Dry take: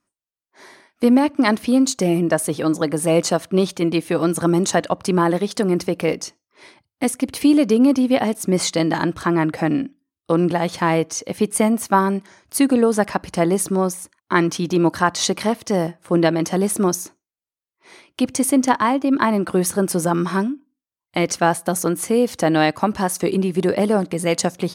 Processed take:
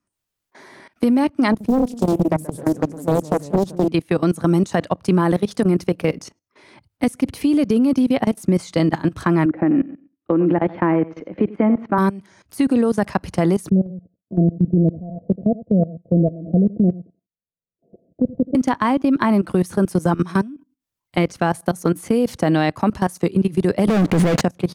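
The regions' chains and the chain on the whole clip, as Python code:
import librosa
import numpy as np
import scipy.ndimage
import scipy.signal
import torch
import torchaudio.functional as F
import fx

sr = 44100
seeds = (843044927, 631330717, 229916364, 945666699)

y = fx.chain(x, sr, fx.echo_pitch(ms=82, semitones=-1, count=2, db_per_echo=-6.0),
    fx.peak_eq(hz=2800.0, db=-14.0, octaves=2.5),
    fx.doppler_dist(depth_ms=0.74), at=(1.52, 3.88))
y = fx.chain(y, sr, fx.cabinet(low_hz=130.0, low_slope=12, high_hz=2100.0, hz=(140.0, 320.0, 550.0), db=(-4, 9, 3)),
    fx.echo_feedback(ms=91, feedback_pct=23, wet_db=-13.5), at=(9.45, 11.98))
y = fx.chain(y, sr, fx.leveller(passes=1),
    fx.cheby_ripple(hz=700.0, ripple_db=9),
    fx.echo_single(ms=83, db=-13.0), at=(13.69, 18.55))
y = fx.chain(y, sr, fx.cvsd(bps=64000),
    fx.high_shelf(hz=3800.0, db=-11.0),
    fx.leveller(passes=5), at=(23.88, 24.41))
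y = fx.level_steps(y, sr, step_db=19)
y = fx.bass_treble(y, sr, bass_db=7, treble_db=-1)
y = fx.band_squash(y, sr, depth_pct=40)
y = y * 10.0 ** (1.0 / 20.0)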